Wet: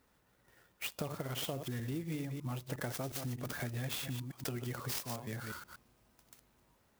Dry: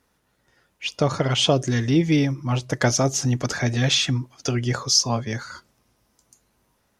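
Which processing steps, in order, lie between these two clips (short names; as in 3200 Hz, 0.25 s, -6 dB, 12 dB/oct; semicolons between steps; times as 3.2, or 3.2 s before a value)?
reverse delay 0.12 s, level -9 dB; compressor 6:1, threshold -34 dBFS, peak gain reduction 19 dB; clock jitter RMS 0.043 ms; gain -3.5 dB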